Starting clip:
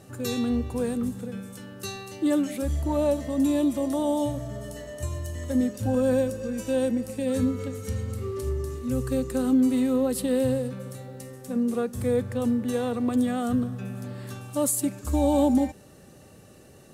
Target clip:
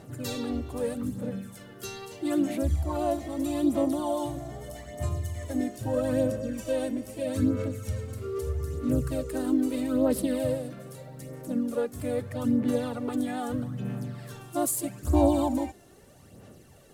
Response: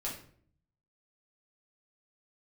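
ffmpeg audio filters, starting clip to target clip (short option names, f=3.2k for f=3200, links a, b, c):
-filter_complex "[0:a]asplit=2[a][b];[b]asetrate=52444,aresample=44100,atempo=0.840896,volume=-6dB[c];[a][c]amix=inputs=2:normalize=0,aphaser=in_gain=1:out_gain=1:delay=2.9:decay=0.51:speed=0.79:type=sinusoidal,volume=-5dB"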